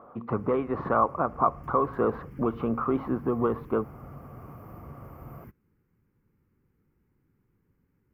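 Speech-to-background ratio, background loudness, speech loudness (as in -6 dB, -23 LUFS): 19.0 dB, -47.0 LUFS, -28.0 LUFS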